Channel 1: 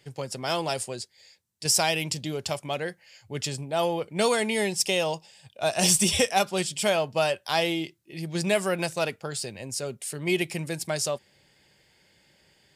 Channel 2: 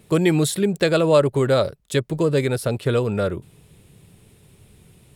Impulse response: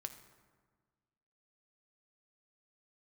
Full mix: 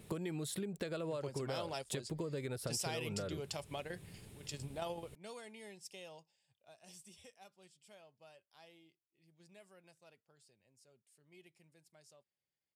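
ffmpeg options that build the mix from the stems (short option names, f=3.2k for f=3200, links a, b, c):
-filter_complex "[0:a]adelay=1050,volume=-5.5dB,afade=t=out:st=6.5:d=0.23:silence=0.334965[a];[1:a]acompressor=threshold=-25dB:ratio=8,volume=-4dB,asplit=2[b][c];[c]apad=whole_len=608600[d];[a][d]sidechaingate=range=-21dB:threshold=-53dB:ratio=16:detection=peak[e];[e][b]amix=inputs=2:normalize=0,acompressor=threshold=-40dB:ratio=3"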